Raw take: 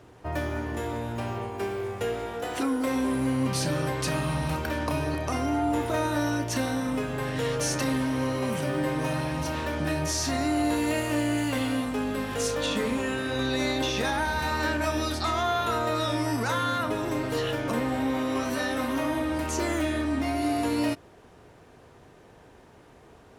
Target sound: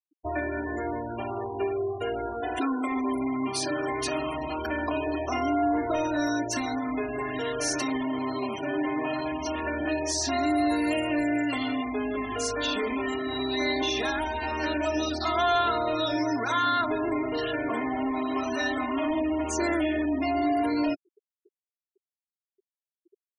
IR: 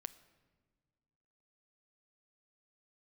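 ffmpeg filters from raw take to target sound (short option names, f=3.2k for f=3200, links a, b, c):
-filter_complex "[0:a]afftfilt=real='re*gte(hypot(re,im),0.0126)':imag='im*gte(hypot(re,im),0.0126)':win_size=1024:overlap=0.75,acrossover=split=260|2000[a][b][c];[a]acompressor=threshold=-41dB:ratio=6[d];[d][b][c]amix=inputs=3:normalize=0,asoftclip=type=tanh:threshold=-22dB,aecho=1:1:2.9:0.91,afftfilt=real='re*gte(hypot(re,im),0.0282)':imag='im*gte(hypot(re,im),0.0282)':win_size=1024:overlap=0.75"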